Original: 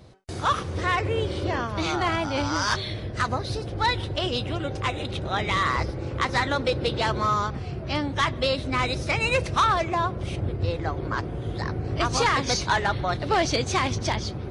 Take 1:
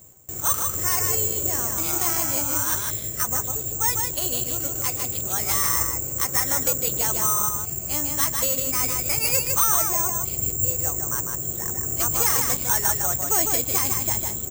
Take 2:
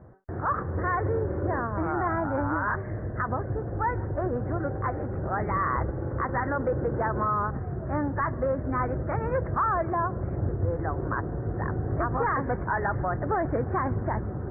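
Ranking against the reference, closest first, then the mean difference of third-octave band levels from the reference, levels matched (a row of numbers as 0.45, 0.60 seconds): 2, 1; 9.5, 13.0 decibels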